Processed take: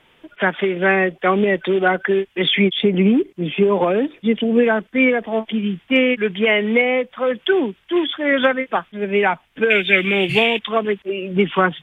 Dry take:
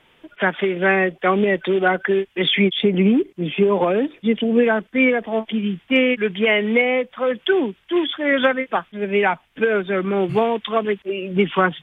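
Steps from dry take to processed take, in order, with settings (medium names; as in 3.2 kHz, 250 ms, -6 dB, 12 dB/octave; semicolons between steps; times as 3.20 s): 9.70–10.59 s: resonant high shelf 1.7 kHz +12 dB, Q 3; trim +1 dB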